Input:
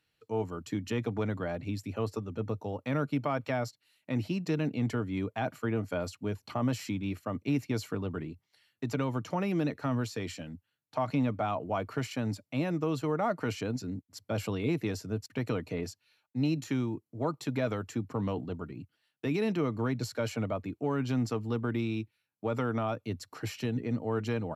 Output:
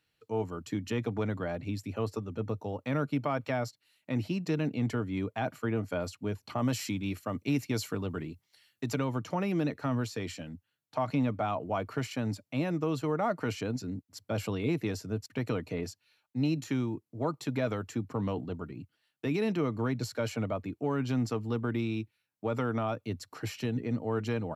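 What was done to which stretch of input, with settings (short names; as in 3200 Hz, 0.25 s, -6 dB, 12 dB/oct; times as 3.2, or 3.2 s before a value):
6.58–8.99 high shelf 3200 Hz +7 dB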